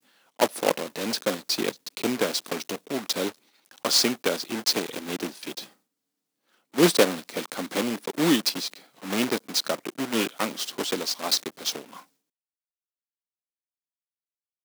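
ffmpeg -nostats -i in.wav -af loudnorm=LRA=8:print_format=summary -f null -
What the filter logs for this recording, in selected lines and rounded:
Input Integrated:    -26.3 LUFS
Input True Peak:      -3.9 dBTP
Input LRA:             3.2 LU
Input Threshold:     -37.0 LUFS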